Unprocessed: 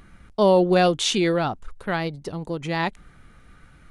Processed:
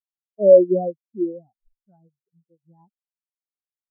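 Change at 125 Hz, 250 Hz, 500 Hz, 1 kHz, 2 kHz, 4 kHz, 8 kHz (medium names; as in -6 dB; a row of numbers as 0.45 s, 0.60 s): -11.0 dB, -3.5 dB, +4.0 dB, -14.5 dB, under -40 dB, under -40 dB, under -40 dB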